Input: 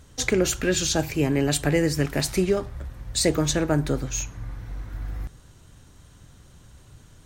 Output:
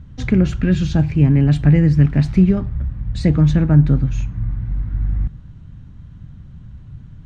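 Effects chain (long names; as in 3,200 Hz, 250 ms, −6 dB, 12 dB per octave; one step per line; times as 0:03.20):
low-pass filter 2,700 Hz 12 dB per octave
low shelf with overshoot 280 Hz +13 dB, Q 1.5
level −1 dB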